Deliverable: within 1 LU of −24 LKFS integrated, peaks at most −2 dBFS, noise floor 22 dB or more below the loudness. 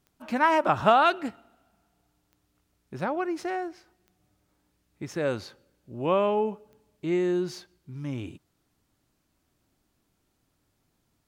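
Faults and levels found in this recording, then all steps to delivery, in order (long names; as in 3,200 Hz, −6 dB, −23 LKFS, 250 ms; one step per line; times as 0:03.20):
number of clicks 4; integrated loudness −26.5 LKFS; sample peak −7.5 dBFS; target loudness −24.0 LKFS
→ click removal
level +2.5 dB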